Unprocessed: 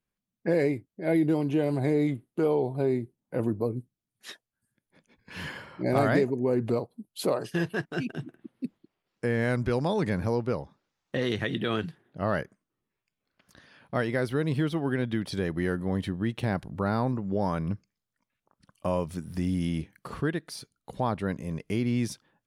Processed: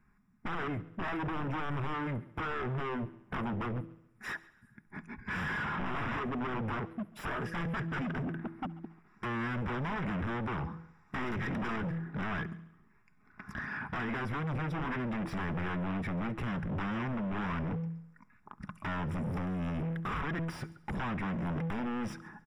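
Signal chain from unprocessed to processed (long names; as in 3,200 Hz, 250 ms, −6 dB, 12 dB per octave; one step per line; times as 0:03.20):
comb filter 4.8 ms, depth 30%
hum removal 164.8 Hz, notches 3
downward compressor 6 to 1, threshold −36 dBFS, peak gain reduction 16.5 dB
sine wavefolder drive 17 dB, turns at −20.5 dBFS
phaser with its sweep stopped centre 1,300 Hz, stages 4
hard clipping −33 dBFS, distortion −7 dB
Savitzky-Golay smoothing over 25 samples
echo machine with several playback heads 69 ms, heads first and second, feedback 41%, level −23 dB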